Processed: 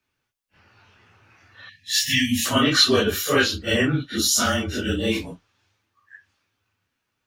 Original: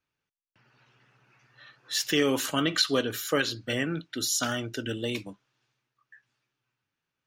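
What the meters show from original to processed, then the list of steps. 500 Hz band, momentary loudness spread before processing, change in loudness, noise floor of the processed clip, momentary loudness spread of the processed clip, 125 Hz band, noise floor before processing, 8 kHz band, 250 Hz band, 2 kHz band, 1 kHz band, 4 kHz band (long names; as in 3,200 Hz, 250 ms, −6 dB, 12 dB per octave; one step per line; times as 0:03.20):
+5.5 dB, 8 LU, +7.5 dB, −78 dBFS, 9 LU, +9.0 dB, below −85 dBFS, +7.5 dB, +7.0 dB, +8.0 dB, +7.5 dB, +8.0 dB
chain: random phases in long frames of 100 ms
time-frequency box erased 0:01.69–0:02.46, 290–1,700 Hz
frequency shifter −26 Hz
level +8 dB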